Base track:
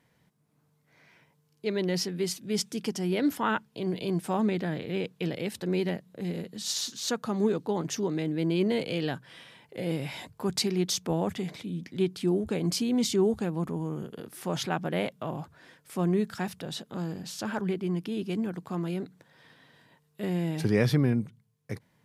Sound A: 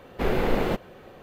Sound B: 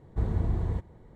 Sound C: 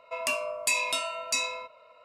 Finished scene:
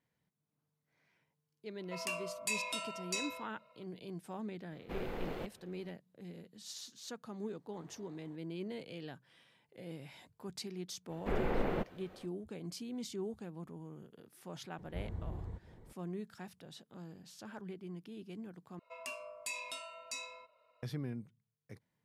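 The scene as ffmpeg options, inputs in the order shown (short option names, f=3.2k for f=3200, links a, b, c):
-filter_complex "[3:a]asplit=2[a][b];[1:a]asplit=2[c][d];[2:a]asplit=2[e][f];[0:a]volume=-16dB[g];[e]highpass=550[h];[d]acrossover=split=2700[i][j];[j]acompressor=threshold=-52dB:ratio=4:attack=1:release=60[k];[i][k]amix=inputs=2:normalize=0[l];[f]acompressor=mode=upward:threshold=-30dB:ratio=2.5:attack=3.2:release=140:knee=2.83:detection=peak[m];[g]asplit=2[n][o];[n]atrim=end=18.794[p];[b]atrim=end=2.04,asetpts=PTS-STARTPTS,volume=-15dB[q];[o]atrim=start=20.826[r];[a]atrim=end=2.04,asetpts=PTS-STARTPTS,volume=-10dB,afade=t=in:d=0.004:c=hsin,afade=t=out:st=2.036:d=0.004:c=hsin,adelay=1800[s];[c]atrim=end=1.22,asetpts=PTS-STARTPTS,volume=-17dB,afade=t=in:d=0.004:c=hsin,afade=t=out:st=1.216:d=0.004:c=hsin,adelay=4700[t];[h]atrim=end=1.15,asetpts=PTS-STARTPTS,volume=-17.5dB,afade=t=in:d=0.004:c=hsin,afade=t=out:st=1.146:d=0.004:c=hsin,adelay=7560[u];[l]atrim=end=1.22,asetpts=PTS-STARTPTS,volume=-9.5dB,afade=t=in:d=0.05,afade=t=out:st=1.17:d=0.05,adelay=11070[v];[m]atrim=end=1.15,asetpts=PTS-STARTPTS,volume=-14.5dB,afade=t=in:d=0.004:c=hsin,afade=t=out:st=1.146:d=0.004:c=hsin,adelay=14780[w];[p][q]acrossfade=d=0.004:c1=hsin:c2=hsin[x];[x][r]acrossfade=d=0.004:c1=hsin:c2=hsin[y];[y][s][t][u][v][w]amix=inputs=6:normalize=0"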